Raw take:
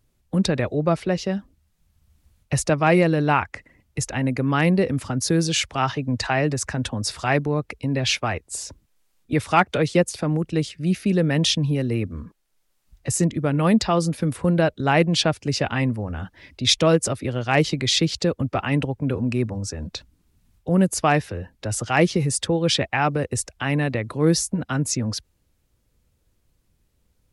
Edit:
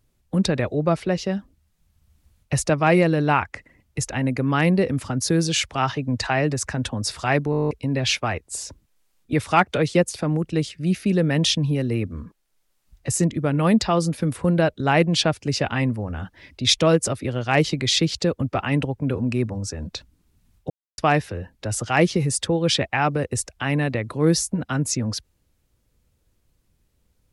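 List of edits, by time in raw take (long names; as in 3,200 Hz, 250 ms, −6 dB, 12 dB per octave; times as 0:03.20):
0:07.51: stutter in place 0.02 s, 10 plays
0:20.70–0:20.98: silence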